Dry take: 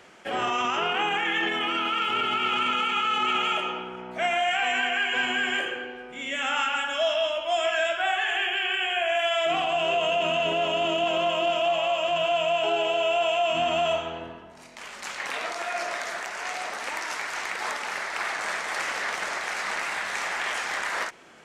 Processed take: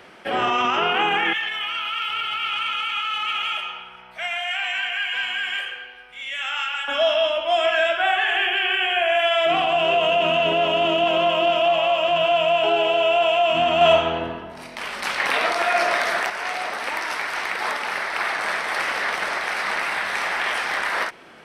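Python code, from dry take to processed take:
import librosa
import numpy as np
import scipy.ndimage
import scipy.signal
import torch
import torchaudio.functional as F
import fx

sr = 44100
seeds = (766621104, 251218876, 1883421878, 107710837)

y = fx.tone_stack(x, sr, knobs='10-0-10', at=(1.33, 6.88))
y = fx.edit(y, sr, fx.clip_gain(start_s=13.81, length_s=2.49, db=5.0), tone=tone)
y = fx.peak_eq(y, sr, hz=7000.0, db=-14.0, octaves=0.38)
y = F.gain(torch.from_numpy(y), 5.5).numpy()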